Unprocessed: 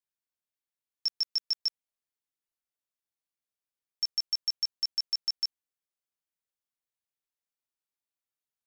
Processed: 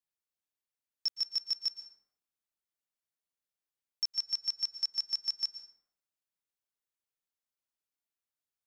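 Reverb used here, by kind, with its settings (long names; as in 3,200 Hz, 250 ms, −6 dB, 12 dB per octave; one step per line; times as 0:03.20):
dense smooth reverb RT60 0.82 s, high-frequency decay 0.5×, pre-delay 105 ms, DRR 11 dB
level −2.5 dB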